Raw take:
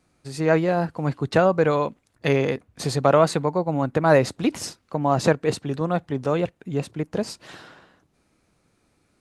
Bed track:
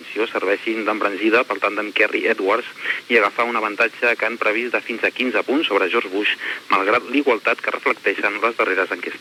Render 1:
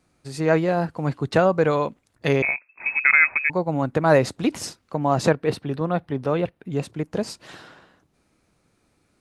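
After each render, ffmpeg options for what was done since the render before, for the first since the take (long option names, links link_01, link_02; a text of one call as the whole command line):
ffmpeg -i in.wav -filter_complex "[0:a]asettb=1/sr,asplit=3[link_01][link_02][link_03];[link_01]atrim=end=2.424[link_04];[link_02]atrim=start=2.42:end=3.5,asetpts=PTS-STARTPTS,afade=type=in:duration=0.004:curve=qsin,afade=type=out:start_time=1.076:duration=0.004:curve=qsin,lowpass=frequency=2300:width_type=q:width=0.5098,lowpass=frequency=2300:width_type=q:width=0.6013,lowpass=frequency=2300:width_type=q:width=0.9,lowpass=frequency=2300:width_type=q:width=2.563,afreqshift=-2700[link_05];[link_03]atrim=start=3.496[link_06];[link_04][link_05]acrossfade=duration=0.004:curve1=hsin:curve2=qsin[link_07];[link_07][link_06]acrossfade=duration=0.004:curve1=qsin:curve2=hsin,asettb=1/sr,asplit=3[link_08][link_09][link_10];[link_08]atrim=end=5.294[link_11];[link_09]atrim=start=5.29:end=6.72,asetpts=PTS-STARTPTS,afade=type=in:duration=0.004:curve=qsin,afade=type=out:start_time=1.426:duration=0.004:curve=qsin,equalizer=frequency=7100:width=1.9:gain=-12.5[link_12];[link_10]atrim=start=6.716[link_13];[link_11][link_12]acrossfade=duration=0.004:curve1=hsin:curve2=qsin[link_14];[link_14][link_13]acrossfade=duration=0.004:curve1=qsin:curve2=hsin" out.wav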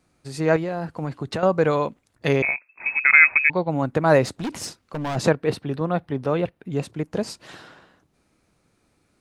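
ffmpeg -i in.wav -filter_complex "[0:a]asettb=1/sr,asplit=3[link_01][link_02][link_03];[link_01]atrim=end=0.564[link_04];[link_02]atrim=start=0.56:end=1.43,asetpts=PTS-STARTPTS,afade=type=in:duration=0.004:curve=qsin,afade=type=out:start_time=0.866:duration=0.004:curve=qsin,acompressor=threshold=-23dB:ratio=6:attack=3.2:release=140:knee=1:detection=peak[link_05];[link_03]atrim=start=1.426[link_06];[link_04][link_05]acrossfade=duration=0.004:curve1=hsin:curve2=qsin[link_07];[link_07][link_06]acrossfade=duration=0.004:curve1=qsin:curve2=hsin,asplit=3[link_08][link_09][link_10];[link_08]afade=type=out:start_time=3.13:duration=0.02[link_11];[link_09]lowpass=frequency=3500:width_type=q:width=3.2,afade=type=in:start_time=3.13:duration=0.02,afade=type=out:start_time=3.69:duration=0.02[link_12];[link_10]afade=type=in:start_time=3.69:duration=0.02[link_13];[link_11][link_12][link_13]amix=inputs=3:normalize=0,asplit=3[link_14][link_15][link_16];[link_14]afade=type=out:start_time=4.26:duration=0.02[link_17];[link_15]asoftclip=type=hard:threshold=-24.5dB,afade=type=in:start_time=4.26:duration=0.02,afade=type=out:start_time=5.15:duration=0.02[link_18];[link_16]afade=type=in:start_time=5.15:duration=0.02[link_19];[link_17][link_18][link_19]amix=inputs=3:normalize=0" out.wav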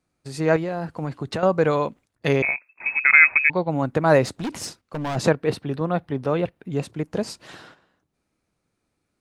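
ffmpeg -i in.wav -af "agate=range=-10dB:threshold=-46dB:ratio=16:detection=peak" out.wav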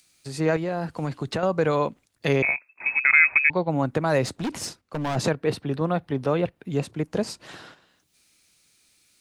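ffmpeg -i in.wav -filter_complex "[0:a]acrossover=split=110|2500[link_01][link_02][link_03];[link_02]alimiter=limit=-12.5dB:level=0:latency=1:release=153[link_04];[link_03]acompressor=mode=upward:threshold=-44dB:ratio=2.5[link_05];[link_01][link_04][link_05]amix=inputs=3:normalize=0" out.wav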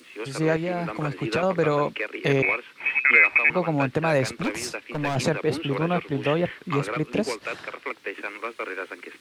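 ffmpeg -i in.wav -i bed.wav -filter_complex "[1:a]volume=-13.5dB[link_01];[0:a][link_01]amix=inputs=2:normalize=0" out.wav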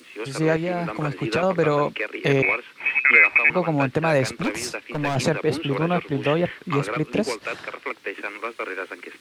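ffmpeg -i in.wav -af "volume=2dB" out.wav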